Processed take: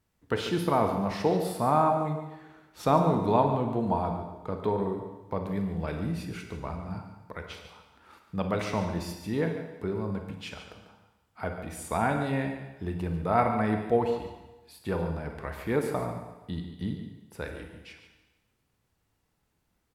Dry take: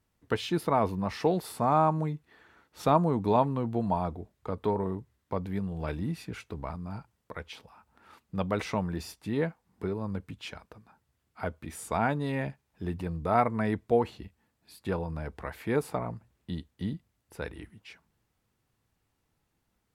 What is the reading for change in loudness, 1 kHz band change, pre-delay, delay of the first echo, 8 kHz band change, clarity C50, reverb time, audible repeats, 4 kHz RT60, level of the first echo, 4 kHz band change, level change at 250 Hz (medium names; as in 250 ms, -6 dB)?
+1.5 dB, +1.5 dB, 29 ms, 144 ms, +1.5 dB, 5.0 dB, 1.1 s, 1, 1.1 s, -11.0 dB, +1.0 dB, +1.5 dB